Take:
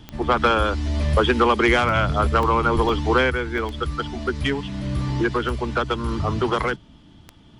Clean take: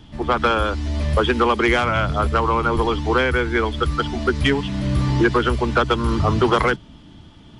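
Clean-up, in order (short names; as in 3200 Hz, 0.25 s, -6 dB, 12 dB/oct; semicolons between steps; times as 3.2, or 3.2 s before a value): de-click; interpolate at 2.43/2.89/3.58, 2 ms; gain 0 dB, from 3.3 s +5 dB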